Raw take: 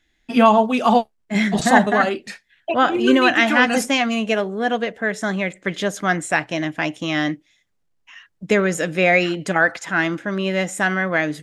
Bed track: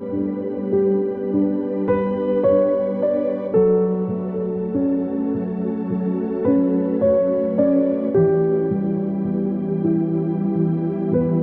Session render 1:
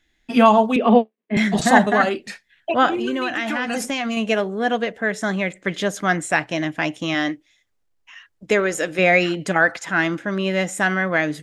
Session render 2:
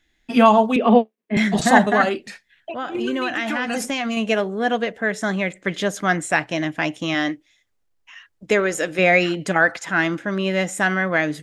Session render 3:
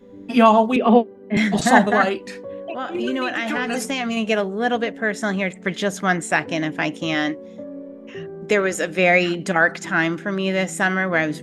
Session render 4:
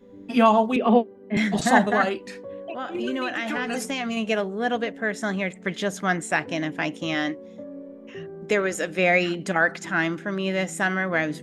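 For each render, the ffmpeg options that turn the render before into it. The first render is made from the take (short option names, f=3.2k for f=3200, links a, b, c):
-filter_complex "[0:a]asettb=1/sr,asplit=3[a][b][c];[a]atrim=end=0.764[d];[b]atrim=start=0.76:end=1.37,asetpts=PTS-STARTPTS,afade=t=in:d=0.004:c=qsin,afade=t=out:st=0.606:d=0.004:c=qsin,highpass=f=210:w=0.5412,highpass=f=210:w=1.3066,equalizer=f=220:t=q:w=4:g=7,equalizer=f=440:t=q:w=4:g=9,equalizer=f=860:t=q:w=4:g=-7,equalizer=f=1.4k:t=q:w=4:g=-8,lowpass=f=2.9k:w=0.5412,lowpass=f=2.9k:w=1.3066[e];[c]atrim=start=1.366[f];[d][e]acrossfade=d=0.004:c1=hsin:c2=qsin[g];[g][f]acrossfade=d=0.004:c1=qsin:c2=hsin,asettb=1/sr,asplit=3[h][i][j];[h]atrim=end=2.944[k];[i]atrim=start=2.94:end=4.17,asetpts=PTS-STARTPTS,afade=t=in:d=0.004:c=qsin,afade=t=out:st=1.226:d=0.004:c=qsin,acompressor=threshold=-20dB:ratio=6:attack=3.2:release=140:knee=1:detection=peak[l];[j]atrim=start=4.166[m];[k][l]acrossfade=d=0.004:c1=hsin:c2=qsin[n];[n][m]acrossfade=d=0.004:c1=qsin:c2=hsin,asettb=1/sr,asplit=3[o][p][q];[o]atrim=end=7.144[r];[p]atrim=start=7.14:end=8.99,asetpts=PTS-STARTPTS,afade=t=in:d=0.004:c=qsin,afade=t=out:st=1.846:d=0.004:c=qsin,equalizer=f=170:w=2.4:g=-11[s];[q]atrim=start=8.986[t];[r][s]acrossfade=d=0.004:c1=hsin:c2=qsin[u];[u][t]acrossfade=d=0.004:c1=qsin:c2=hsin"
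-filter_complex "[0:a]asettb=1/sr,asplit=3[a][b][c];[a]atrim=end=2.244[d];[b]atrim=start=2.24:end=2.95,asetpts=PTS-STARTPTS,afade=t=in:d=0.004:c=qsin,afade=t=out:st=0.706:d=0.004:c=qsin,acompressor=threshold=-34dB:ratio=2:attack=3.2:release=140:knee=1:detection=peak[e];[c]atrim=start=2.946[f];[d][e]acrossfade=d=0.004:c1=hsin:c2=qsin[g];[g][f]acrossfade=d=0.004:c1=qsin:c2=hsin"
-filter_complex "[1:a]volume=-18dB[a];[0:a][a]amix=inputs=2:normalize=0"
-af "volume=-4dB"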